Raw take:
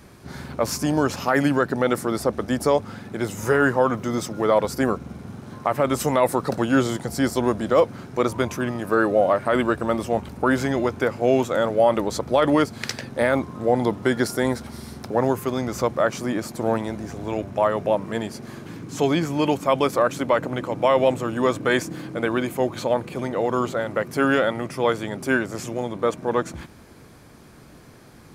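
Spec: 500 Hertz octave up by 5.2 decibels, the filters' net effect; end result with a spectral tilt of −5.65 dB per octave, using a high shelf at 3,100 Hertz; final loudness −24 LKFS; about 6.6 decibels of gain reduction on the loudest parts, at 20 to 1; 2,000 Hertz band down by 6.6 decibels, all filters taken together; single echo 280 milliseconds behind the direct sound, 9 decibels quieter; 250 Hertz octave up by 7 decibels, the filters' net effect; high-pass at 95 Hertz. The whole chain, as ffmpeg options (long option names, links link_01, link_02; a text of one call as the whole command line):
ffmpeg -i in.wav -af "highpass=95,equalizer=frequency=250:width_type=o:gain=7,equalizer=frequency=500:width_type=o:gain=5,equalizer=frequency=2000:width_type=o:gain=-8,highshelf=frequency=3100:gain=-7,acompressor=threshold=-14dB:ratio=20,aecho=1:1:280:0.355,volume=-3dB" out.wav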